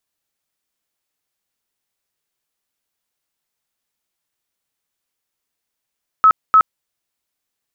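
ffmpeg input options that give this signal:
-f lavfi -i "aevalsrc='0.501*sin(2*PI*1290*mod(t,0.3))*lt(mod(t,0.3),89/1290)':d=0.6:s=44100"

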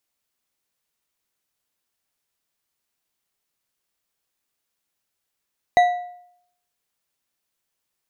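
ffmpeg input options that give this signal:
-f lavfi -i "aevalsrc='0.355*pow(10,-3*t/0.7)*sin(2*PI*713*t)+0.112*pow(10,-3*t/0.516)*sin(2*PI*1965.7*t)+0.0355*pow(10,-3*t/0.422)*sin(2*PI*3853.1*t)+0.0112*pow(10,-3*t/0.363)*sin(2*PI*6369.2*t)+0.00355*pow(10,-3*t/0.322)*sin(2*PI*9511.4*t)':d=1.55:s=44100"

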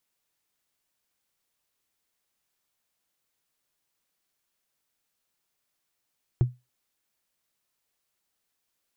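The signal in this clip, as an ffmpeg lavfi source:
-f lavfi -i "aevalsrc='0.211*pow(10,-3*t/0.22)*sin(2*PI*124*t)+0.0596*pow(10,-3*t/0.065)*sin(2*PI*341.9*t)+0.0168*pow(10,-3*t/0.029)*sin(2*PI*670.1*t)+0.00473*pow(10,-3*t/0.016)*sin(2*PI*1107.7*t)+0.00133*pow(10,-3*t/0.01)*sin(2*PI*1654.2*t)':d=0.45:s=44100"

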